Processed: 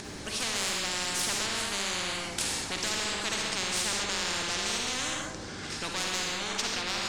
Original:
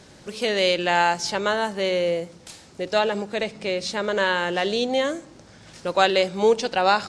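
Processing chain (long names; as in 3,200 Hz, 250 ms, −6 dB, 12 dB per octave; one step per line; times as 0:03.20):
one-sided soft clipper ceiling −14 dBFS
source passing by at 0:03.24, 15 m/s, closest 22 metres
low shelf with overshoot 400 Hz +10 dB, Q 3
upward compression, threshold −44 dBFS
convolution reverb, pre-delay 38 ms, DRR −0.5 dB
every bin compressed towards the loudest bin 10 to 1
level −8 dB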